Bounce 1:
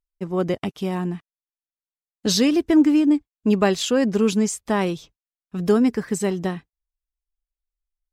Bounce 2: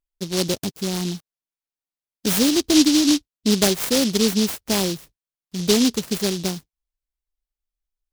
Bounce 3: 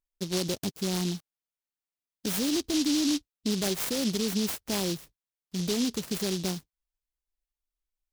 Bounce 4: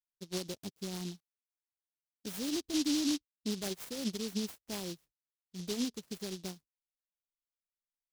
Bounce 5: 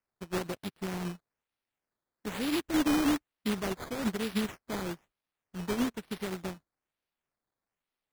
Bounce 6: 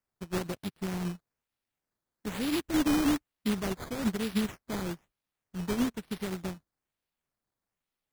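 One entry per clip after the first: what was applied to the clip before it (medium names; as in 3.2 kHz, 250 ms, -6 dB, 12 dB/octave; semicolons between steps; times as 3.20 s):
delay time shaken by noise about 4.4 kHz, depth 0.22 ms
peak limiter -17 dBFS, peak gain reduction 9.5 dB; trim -4 dB
upward expansion 2.5:1, over -38 dBFS; trim -4 dB
decimation with a swept rate 11×, swing 100% 1.1 Hz; trim +4.5 dB
tone controls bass +5 dB, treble +2 dB; trim -1 dB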